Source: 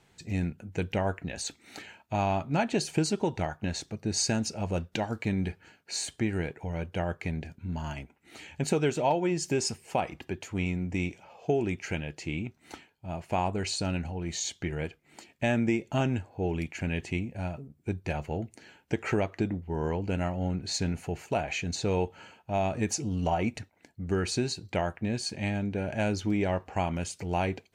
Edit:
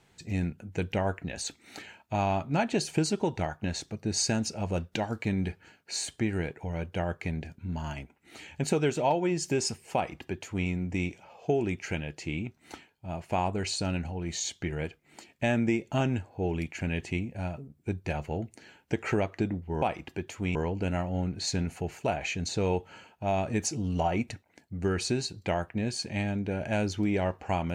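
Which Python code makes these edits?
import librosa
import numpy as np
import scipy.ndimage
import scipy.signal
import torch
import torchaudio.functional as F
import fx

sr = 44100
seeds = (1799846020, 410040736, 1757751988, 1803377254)

y = fx.edit(x, sr, fx.duplicate(start_s=9.95, length_s=0.73, to_s=19.82), tone=tone)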